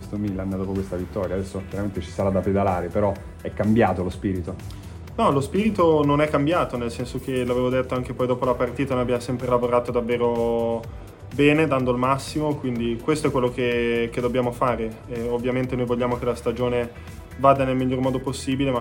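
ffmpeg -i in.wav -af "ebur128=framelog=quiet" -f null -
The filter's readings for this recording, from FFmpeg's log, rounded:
Integrated loudness:
  I:         -23.1 LUFS
  Threshold: -33.3 LUFS
Loudness range:
  LRA:         2.2 LU
  Threshold: -43.2 LUFS
  LRA low:   -24.2 LUFS
  LRA high:  -22.0 LUFS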